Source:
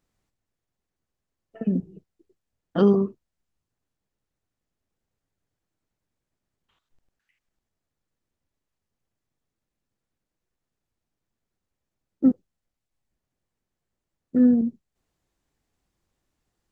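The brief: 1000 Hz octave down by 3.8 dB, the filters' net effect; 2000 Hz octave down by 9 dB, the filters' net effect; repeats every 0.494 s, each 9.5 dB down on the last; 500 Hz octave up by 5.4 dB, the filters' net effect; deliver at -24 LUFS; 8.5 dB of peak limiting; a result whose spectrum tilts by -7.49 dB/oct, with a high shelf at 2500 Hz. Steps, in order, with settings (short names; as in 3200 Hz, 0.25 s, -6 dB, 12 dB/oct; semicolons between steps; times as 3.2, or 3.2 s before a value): bell 500 Hz +9 dB; bell 1000 Hz -6.5 dB; bell 2000 Hz -8 dB; high shelf 2500 Hz -7 dB; limiter -13.5 dBFS; feedback echo 0.494 s, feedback 33%, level -9.5 dB; gain +3 dB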